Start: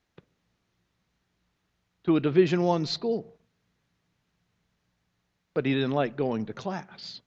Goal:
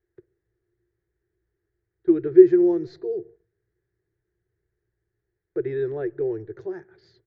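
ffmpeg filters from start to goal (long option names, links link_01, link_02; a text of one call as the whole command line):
ffmpeg -i in.wav -af "firequalizer=gain_entry='entry(110,0);entry(240,-29);entry(350,12);entry(550,-10);entry(1100,-18);entry(1700,-3);entry(2700,-26);entry(4300,-21)':delay=0.05:min_phase=1" out.wav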